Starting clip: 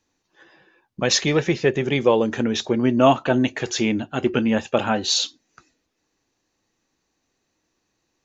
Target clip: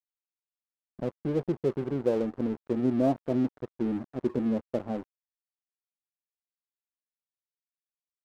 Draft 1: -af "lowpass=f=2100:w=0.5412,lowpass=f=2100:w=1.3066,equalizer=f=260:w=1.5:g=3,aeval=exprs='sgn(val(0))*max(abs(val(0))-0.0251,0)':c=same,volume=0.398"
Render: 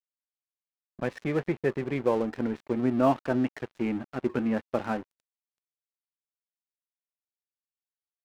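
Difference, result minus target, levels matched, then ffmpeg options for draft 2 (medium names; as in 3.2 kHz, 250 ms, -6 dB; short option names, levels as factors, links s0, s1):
2 kHz band +11.0 dB
-af "lowpass=f=640:w=0.5412,lowpass=f=640:w=1.3066,equalizer=f=260:w=1.5:g=3,aeval=exprs='sgn(val(0))*max(abs(val(0))-0.0251,0)':c=same,volume=0.398"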